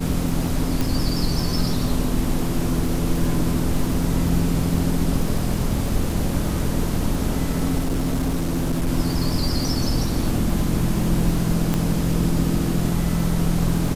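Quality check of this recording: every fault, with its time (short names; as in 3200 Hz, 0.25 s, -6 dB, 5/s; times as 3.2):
crackle 48/s -27 dBFS
0.81 pop
3.94 gap 2.2 ms
7.78–8.89 clipped -18 dBFS
11.74 pop -8 dBFS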